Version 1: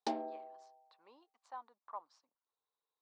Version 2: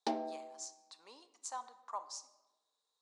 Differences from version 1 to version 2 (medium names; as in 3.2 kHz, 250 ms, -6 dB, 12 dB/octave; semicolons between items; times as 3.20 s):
speech: remove distance through air 420 m; reverb: on, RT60 1.1 s